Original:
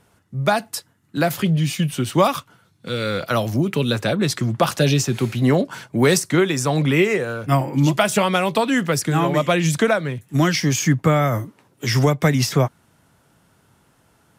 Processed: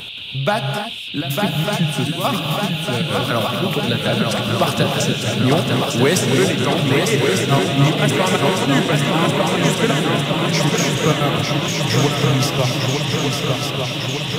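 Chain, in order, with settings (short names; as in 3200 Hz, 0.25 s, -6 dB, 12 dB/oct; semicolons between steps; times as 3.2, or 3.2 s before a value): in parallel at -2 dB: upward compressor, threshold -18 dBFS; on the sum: step gate "x.x.xxxx..xx.x.x" 174 bpm -12 dB; band noise 2500–3800 Hz -27 dBFS; on a send: swung echo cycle 1.202 s, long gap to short 3:1, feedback 67%, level -4.5 dB; on the sum: non-linear reverb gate 0.32 s rising, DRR 4.5 dB; gain -5.5 dB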